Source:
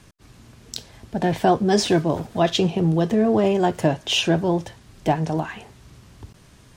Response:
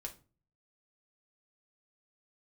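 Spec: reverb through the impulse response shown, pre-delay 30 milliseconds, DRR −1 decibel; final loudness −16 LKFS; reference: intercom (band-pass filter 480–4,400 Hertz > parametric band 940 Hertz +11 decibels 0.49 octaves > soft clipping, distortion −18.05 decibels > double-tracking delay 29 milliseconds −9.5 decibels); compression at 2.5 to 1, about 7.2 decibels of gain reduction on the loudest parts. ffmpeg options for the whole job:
-filter_complex "[0:a]acompressor=threshold=-24dB:ratio=2.5,asplit=2[link_01][link_02];[1:a]atrim=start_sample=2205,adelay=30[link_03];[link_02][link_03]afir=irnorm=-1:irlink=0,volume=4dB[link_04];[link_01][link_04]amix=inputs=2:normalize=0,highpass=480,lowpass=4400,equalizer=frequency=940:width_type=o:width=0.49:gain=11,asoftclip=threshold=-14.5dB,asplit=2[link_05][link_06];[link_06]adelay=29,volume=-9.5dB[link_07];[link_05][link_07]amix=inputs=2:normalize=0,volume=10dB"

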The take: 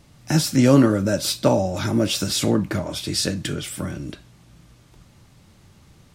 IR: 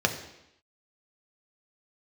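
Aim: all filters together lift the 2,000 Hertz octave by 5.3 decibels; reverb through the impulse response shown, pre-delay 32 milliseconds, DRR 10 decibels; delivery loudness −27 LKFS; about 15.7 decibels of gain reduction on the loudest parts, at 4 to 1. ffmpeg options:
-filter_complex "[0:a]equalizer=frequency=2000:width_type=o:gain=7,acompressor=threshold=-29dB:ratio=4,asplit=2[link_01][link_02];[1:a]atrim=start_sample=2205,adelay=32[link_03];[link_02][link_03]afir=irnorm=-1:irlink=0,volume=-22dB[link_04];[link_01][link_04]amix=inputs=2:normalize=0,volume=3.5dB"

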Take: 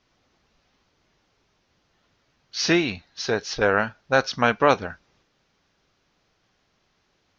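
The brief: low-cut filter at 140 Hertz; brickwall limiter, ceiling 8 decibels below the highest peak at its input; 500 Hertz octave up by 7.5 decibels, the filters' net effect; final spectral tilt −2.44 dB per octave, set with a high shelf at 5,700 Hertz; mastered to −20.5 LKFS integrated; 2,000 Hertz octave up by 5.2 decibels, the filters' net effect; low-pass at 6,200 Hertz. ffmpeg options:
ffmpeg -i in.wav -af "highpass=140,lowpass=6200,equalizer=frequency=500:width_type=o:gain=8.5,equalizer=frequency=2000:width_type=o:gain=7.5,highshelf=frequency=5700:gain=-7,volume=1dB,alimiter=limit=-5dB:level=0:latency=1" out.wav

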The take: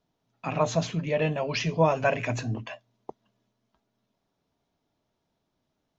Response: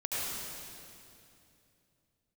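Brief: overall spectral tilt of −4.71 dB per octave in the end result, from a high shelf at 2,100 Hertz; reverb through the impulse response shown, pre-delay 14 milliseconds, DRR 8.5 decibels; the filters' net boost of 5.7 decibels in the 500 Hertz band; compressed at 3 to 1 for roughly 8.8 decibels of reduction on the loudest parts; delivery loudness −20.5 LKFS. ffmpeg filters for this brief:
-filter_complex "[0:a]equalizer=frequency=500:width_type=o:gain=6.5,highshelf=frequency=2100:gain=7.5,acompressor=threshold=-25dB:ratio=3,asplit=2[link_01][link_02];[1:a]atrim=start_sample=2205,adelay=14[link_03];[link_02][link_03]afir=irnorm=-1:irlink=0,volume=-15dB[link_04];[link_01][link_04]amix=inputs=2:normalize=0,volume=8.5dB"

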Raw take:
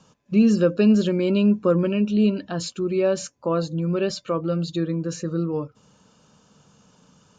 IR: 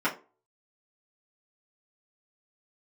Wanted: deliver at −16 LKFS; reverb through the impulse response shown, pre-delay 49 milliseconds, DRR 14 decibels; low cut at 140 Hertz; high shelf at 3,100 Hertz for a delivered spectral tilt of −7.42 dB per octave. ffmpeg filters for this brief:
-filter_complex "[0:a]highpass=140,highshelf=frequency=3100:gain=-4.5,asplit=2[link_01][link_02];[1:a]atrim=start_sample=2205,adelay=49[link_03];[link_02][link_03]afir=irnorm=-1:irlink=0,volume=-26dB[link_04];[link_01][link_04]amix=inputs=2:normalize=0,volume=6.5dB"

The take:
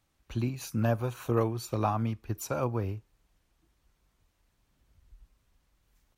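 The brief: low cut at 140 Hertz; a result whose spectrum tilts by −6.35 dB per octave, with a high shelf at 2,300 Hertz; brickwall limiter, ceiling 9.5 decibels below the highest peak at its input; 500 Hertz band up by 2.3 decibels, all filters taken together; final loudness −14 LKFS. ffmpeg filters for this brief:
ffmpeg -i in.wav -af "highpass=140,equalizer=frequency=500:width_type=o:gain=3,highshelf=frequency=2300:gain=-4,volume=21dB,alimiter=limit=-1.5dB:level=0:latency=1" out.wav

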